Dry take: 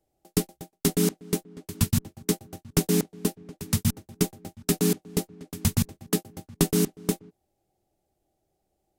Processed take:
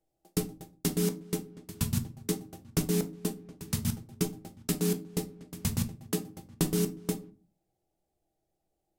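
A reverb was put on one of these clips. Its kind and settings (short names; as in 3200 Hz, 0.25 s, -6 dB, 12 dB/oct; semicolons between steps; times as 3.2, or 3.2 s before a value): shoebox room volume 180 m³, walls furnished, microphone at 0.67 m; gain -6.5 dB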